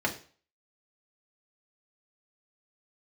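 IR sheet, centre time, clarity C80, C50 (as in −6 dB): 11 ms, 17.0 dB, 12.0 dB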